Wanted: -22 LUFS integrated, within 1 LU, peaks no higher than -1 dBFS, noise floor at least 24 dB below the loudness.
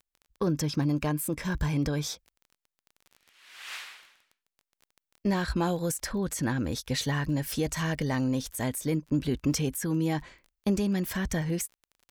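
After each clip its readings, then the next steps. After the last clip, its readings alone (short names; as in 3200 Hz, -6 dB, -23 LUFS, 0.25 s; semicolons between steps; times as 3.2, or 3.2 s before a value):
ticks 20/s; loudness -30.0 LUFS; peak -15.0 dBFS; loudness target -22.0 LUFS
-> de-click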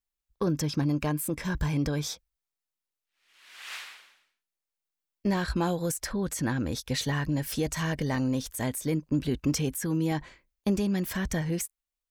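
ticks 0.25/s; loudness -30.0 LUFS; peak -15.0 dBFS; loudness target -22.0 LUFS
-> gain +8 dB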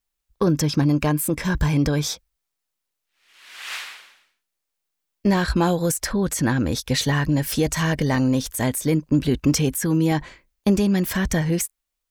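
loudness -22.0 LUFS; peak -7.0 dBFS; noise floor -81 dBFS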